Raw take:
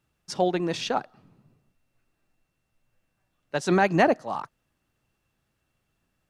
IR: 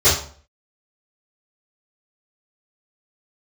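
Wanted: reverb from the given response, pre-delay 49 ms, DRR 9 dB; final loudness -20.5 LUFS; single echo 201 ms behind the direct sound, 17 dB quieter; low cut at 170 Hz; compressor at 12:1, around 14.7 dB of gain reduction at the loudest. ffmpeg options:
-filter_complex "[0:a]highpass=170,acompressor=threshold=0.0316:ratio=12,aecho=1:1:201:0.141,asplit=2[s0][s1];[1:a]atrim=start_sample=2205,adelay=49[s2];[s1][s2]afir=irnorm=-1:irlink=0,volume=0.0282[s3];[s0][s3]amix=inputs=2:normalize=0,volume=5.62"

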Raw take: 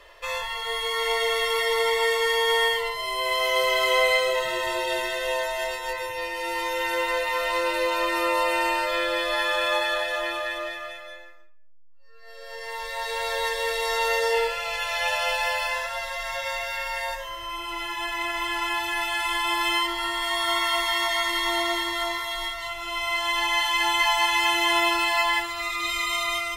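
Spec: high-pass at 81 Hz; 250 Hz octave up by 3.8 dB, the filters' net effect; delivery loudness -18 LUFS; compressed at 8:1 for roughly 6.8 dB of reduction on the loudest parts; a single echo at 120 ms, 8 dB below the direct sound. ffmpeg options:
-af "highpass=81,equalizer=f=250:t=o:g=7,acompressor=threshold=0.0631:ratio=8,aecho=1:1:120:0.398,volume=2.66"

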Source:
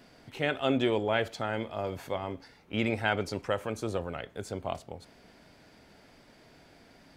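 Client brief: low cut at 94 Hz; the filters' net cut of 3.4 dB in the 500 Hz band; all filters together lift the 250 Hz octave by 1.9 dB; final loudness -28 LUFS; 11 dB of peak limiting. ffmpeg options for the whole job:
-af "highpass=94,equalizer=f=250:t=o:g=4,equalizer=f=500:t=o:g=-5.5,volume=2.82,alimiter=limit=0.188:level=0:latency=1"

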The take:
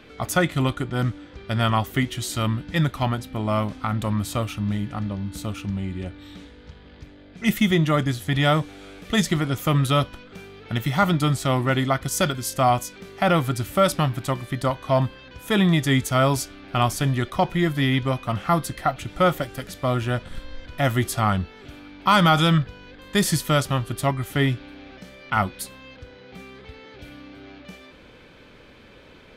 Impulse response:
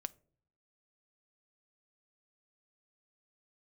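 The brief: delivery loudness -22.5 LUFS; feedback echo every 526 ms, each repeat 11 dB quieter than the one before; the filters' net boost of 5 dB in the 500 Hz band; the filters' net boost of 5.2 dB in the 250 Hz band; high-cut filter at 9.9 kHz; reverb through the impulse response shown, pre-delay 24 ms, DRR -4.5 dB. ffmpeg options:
-filter_complex "[0:a]lowpass=9900,equalizer=f=250:t=o:g=6,equalizer=f=500:t=o:g=5,aecho=1:1:526|1052|1578:0.282|0.0789|0.0221,asplit=2[s0][s1];[1:a]atrim=start_sample=2205,adelay=24[s2];[s1][s2]afir=irnorm=-1:irlink=0,volume=2.24[s3];[s0][s3]amix=inputs=2:normalize=0,volume=0.376"

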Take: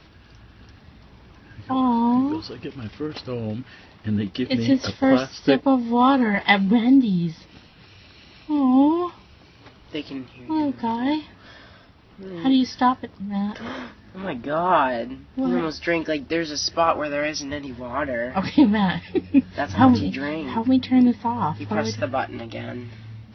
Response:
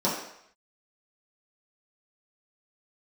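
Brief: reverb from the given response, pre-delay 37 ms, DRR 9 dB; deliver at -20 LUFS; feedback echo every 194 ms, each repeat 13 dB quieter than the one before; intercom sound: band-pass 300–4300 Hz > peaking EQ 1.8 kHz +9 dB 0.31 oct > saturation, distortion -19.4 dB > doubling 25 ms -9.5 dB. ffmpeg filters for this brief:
-filter_complex "[0:a]aecho=1:1:194|388|582:0.224|0.0493|0.0108,asplit=2[s0][s1];[1:a]atrim=start_sample=2205,adelay=37[s2];[s1][s2]afir=irnorm=-1:irlink=0,volume=0.0841[s3];[s0][s3]amix=inputs=2:normalize=0,highpass=300,lowpass=4300,equalizer=f=1800:t=o:w=0.31:g=9,asoftclip=threshold=0.376,asplit=2[s4][s5];[s5]adelay=25,volume=0.335[s6];[s4][s6]amix=inputs=2:normalize=0,volume=1.41"

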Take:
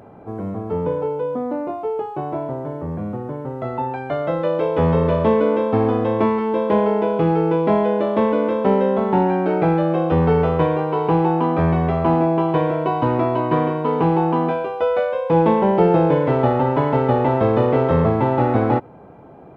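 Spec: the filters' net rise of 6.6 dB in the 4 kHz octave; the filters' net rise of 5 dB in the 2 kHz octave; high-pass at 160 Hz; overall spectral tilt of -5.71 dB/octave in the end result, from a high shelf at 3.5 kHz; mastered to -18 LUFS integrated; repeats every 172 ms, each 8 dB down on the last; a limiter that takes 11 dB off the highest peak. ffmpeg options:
-af "highpass=160,equalizer=f=2000:t=o:g=4.5,highshelf=f=3500:g=4,equalizer=f=4000:t=o:g=4.5,alimiter=limit=0.188:level=0:latency=1,aecho=1:1:172|344|516|688|860:0.398|0.159|0.0637|0.0255|0.0102,volume=1.78"

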